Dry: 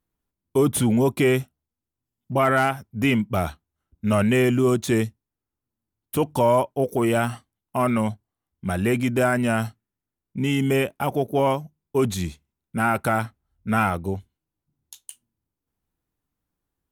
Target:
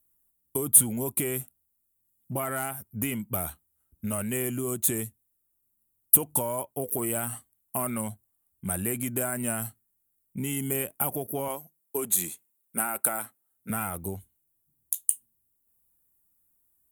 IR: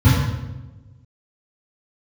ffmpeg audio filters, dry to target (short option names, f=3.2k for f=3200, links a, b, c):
-filter_complex "[0:a]asettb=1/sr,asplit=3[a][b][c];[a]atrim=end=11.484[d];[b]atrim=start=11.48:end=13.7,asetpts=PTS-STARTPTS,afade=t=in:d=0.004:c=qsin,afade=t=out:st=2.216:d=0.004:c=qsin,highpass=290[e];[c]atrim=start=13.696[f];[d][e]acrossfade=d=0.004:c1=hsin:c2=qsin[g];[g][f]acrossfade=d=0.004:c1=qsin:c2=hsin,acompressor=threshold=-25dB:ratio=6,aexciter=amount=14.5:drive=2.5:freq=7.6k,volume=-4dB"